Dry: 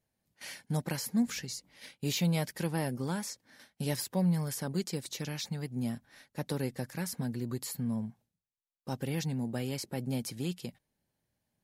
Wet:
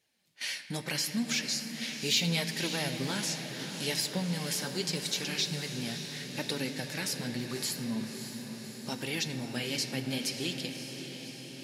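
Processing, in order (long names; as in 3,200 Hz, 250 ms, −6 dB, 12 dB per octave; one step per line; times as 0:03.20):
meter weighting curve D
in parallel at +2 dB: downward compressor, threshold −40 dBFS, peak gain reduction 18 dB
on the sum: flanger 0.77 Hz, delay 2.1 ms, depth 8.9 ms, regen +40%
feedback delay with all-pass diffusion 582 ms, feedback 67%, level −9 dB
on a send at −9 dB: convolution reverb RT60 3.1 s, pre-delay 7 ms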